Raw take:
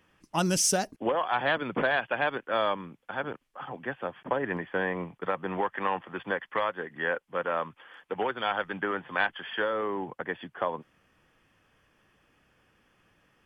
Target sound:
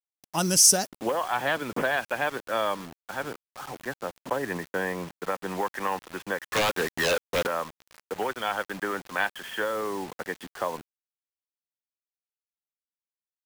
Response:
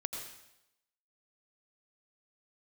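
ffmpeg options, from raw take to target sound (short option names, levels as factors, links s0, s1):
-filter_complex "[0:a]aexciter=amount=3.3:drive=3.6:freq=4500,acrusher=bits=6:mix=0:aa=0.000001,asettb=1/sr,asplit=3[s0][s1][s2];[s0]atrim=end=6.474[s3];[s1]atrim=start=6.47:end=7.47,asetpts=PTS-STARTPTS,afade=t=in:d=0.004:c=qsin,afade=t=out:st=0.996:d=0.004:c=qsin,aeval=exprs='0.2*(cos(1*acos(clip(val(0)/0.2,-1,1)))-cos(1*PI/2))+0.0891*(cos(3*acos(clip(val(0)/0.2,-1,1)))-cos(3*PI/2))+0.0891*(cos(7*acos(clip(val(0)/0.2,-1,1)))-cos(7*PI/2))':c=same[s4];[s2]atrim=start=7.466[s5];[s3][s4]acrossfade=d=0.004:c1=hsin:c2=qsin[s6];[s6][s5]acrossfade=d=0.004:c1=qsin:c2=hsin"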